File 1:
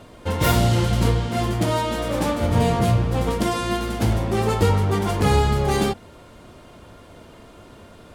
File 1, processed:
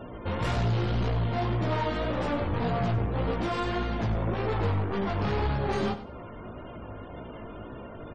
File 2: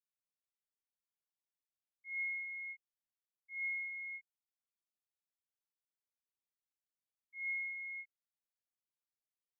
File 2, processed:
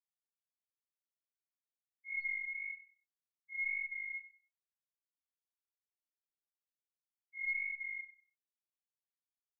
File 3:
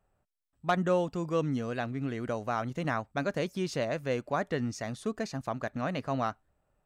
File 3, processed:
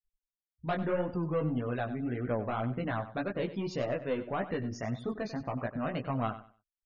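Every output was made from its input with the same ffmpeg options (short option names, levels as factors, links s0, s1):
-filter_complex "[0:a]aeval=exprs='(tanh(20*val(0)+0.15)-tanh(0.15))/20':c=same,aemphasis=mode=reproduction:type=50fm,asplit=2[s0][s1];[s1]acompressor=threshold=0.0112:ratio=5,volume=1.26[s2];[s0][s2]amix=inputs=2:normalize=0,flanger=delay=15.5:depth=4.4:speed=1.8,afftfilt=real='re*gte(hypot(re,im),0.00501)':imag='im*gte(hypot(re,im),0.00501)':win_size=1024:overlap=0.75,asplit=2[s3][s4];[s4]aecho=0:1:96|192|288:0.211|0.0486|0.0112[s5];[s3][s5]amix=inputs=2:normalize=0"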